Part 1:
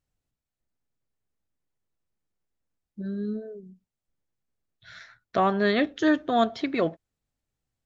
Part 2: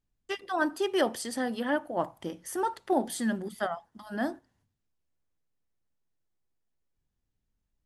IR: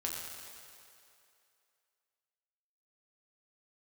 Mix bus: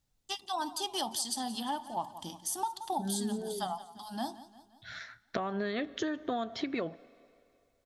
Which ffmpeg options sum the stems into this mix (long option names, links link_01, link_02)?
-filter_complex "[0:a]acompressor=threshold=-27dB:ratio=6,volume=1.5dB,asplit=2[link_01][link_02];[link_02]volume=-23dB[link_03];[1:a]firequalizer=gain_entry='entry(230,0);entry(490,-15);entry(830,10);entry(1400,-8);entry(2000,-10);entry(3500,13);entry(12000,10)':delay=0.05:min_phase=1,volume=-4dB,asplit=2[link_04][link_05];[link_05]volume=-17.5dB[link_06];[2:a]atrim=start_sample=2205[link_07];[link_03][link_07]afir=irnorm=-1:irlink=0[link_08];[link_06]aecho=0:1:174|348|522|696|870|1044|1218:1|0.51|0.26|0.133|0.0677|0.0345|0.0176[link_09];[link_01][link_04][link_08][link_09]amix=inputs=4:normalize=0,acompressor=threshold=-30dB:ratio=6"